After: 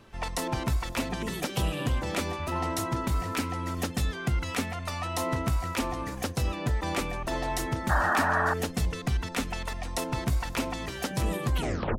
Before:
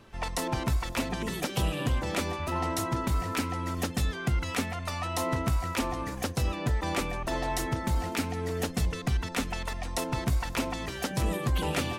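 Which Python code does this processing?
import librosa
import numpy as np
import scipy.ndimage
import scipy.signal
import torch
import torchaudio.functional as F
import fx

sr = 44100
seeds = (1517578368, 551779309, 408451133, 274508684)

y = fx.tape_stop_end(x, sr, length_s=0.42)
y = fx.spec_paint(y, sr, seeds[0], shape='noise', start_s=7.89, length_s=0.65, low_hz=570.0, high_hz=1900.0, level_db=-26.0)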